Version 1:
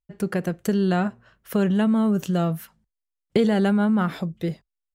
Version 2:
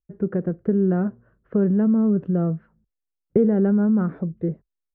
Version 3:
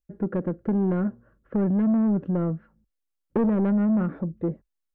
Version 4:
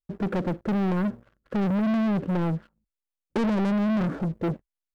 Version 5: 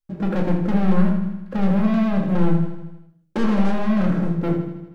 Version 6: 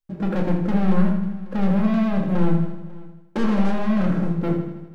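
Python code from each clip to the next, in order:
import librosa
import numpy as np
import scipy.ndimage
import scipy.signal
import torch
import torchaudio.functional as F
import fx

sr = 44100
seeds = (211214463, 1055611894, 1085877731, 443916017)

y1 = scipy.signal.sosfilt(scipy.signal.cheby1(3, 1.0, 1500.0, 'lowpass', fs=sr, output='sos'), x)
y1 = fx.low_shelf_res(y1, sr, hz=610.0, db=8.0, q=1.5)
y1 = y1 * 10.0 ** (-7.0 / 20.0)
y2 = y1 + 0.33 * np.pad(y1, (int(3.6 * sr / 1000.0), 0))[:len(y1)]
y2 = 10.0 ** (-17.5 / 20.0) * np.tanh(y2 / 10.0 ** (-17.5 / 20.0))
y3 = fx.leveller(y2, sr, passes=3)
y3 = y3 * 10.0 ** (-4.0 / 20.0)
y4 = fx.echo_feedback(y3, sr, ms=79, feedback_pct=60, wet_db=-9.5)
y4 = fx.room_shoebox(y4, sr, seeds[0], volume_m3=470.0, walls='furnished', distance_m=2.2)
y5 = y4 + 10.0 ** (-22.0 / 20.0) * np.pad(y4, (int(544 * sr / 1000.0), 0))[:len(y4)]
y5 = y5 * 10.0 ** (-1.0 / 20.0)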